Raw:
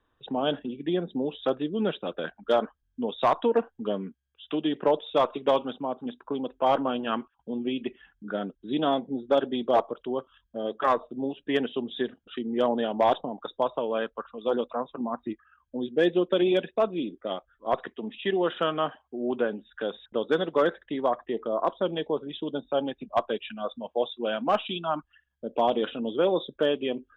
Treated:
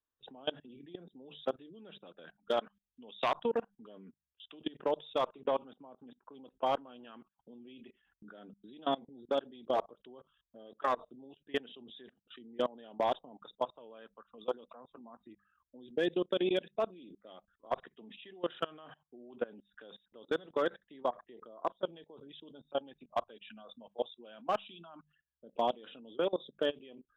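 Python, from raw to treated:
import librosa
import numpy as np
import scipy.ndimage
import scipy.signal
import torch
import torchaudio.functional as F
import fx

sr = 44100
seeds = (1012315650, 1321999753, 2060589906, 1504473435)

y = fx.peak_eq(x, sr, hz=2800.0, db=11.5, octaves=1.3, at=(2.57, 3.32))
y = fx.lowpass(y, sr, hz=2300.0, slope=12, at=(5.28, 6.31))
y = fx.high_shelf(y, sr, hz=3300.0, db=6.5)
y = fx.hum_notches(y, sr, base_hz=50, count=4)
y = fx.level_steps(y, sr, step_db=23)
y = F.gain(torch.from_numpy(y), -6.0).numpy()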